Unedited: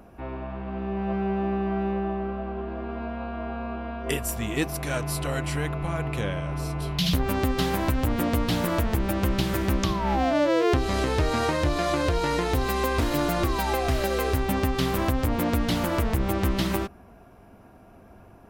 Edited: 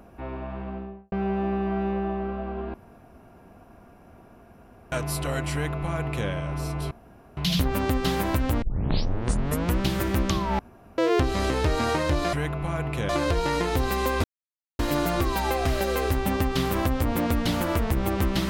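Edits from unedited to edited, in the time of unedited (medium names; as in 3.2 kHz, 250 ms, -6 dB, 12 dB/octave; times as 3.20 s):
0.59–1.12 s: studio fade out
2.74–4.92 s: room tone
5.53–6.29 s: copy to 11.87 s
6.91 s: insert room tone 0.46 s
8.16 s: tape start 1.18 s
10.13–10.52 s: room tone
13.02 s: insert silence 0.55 s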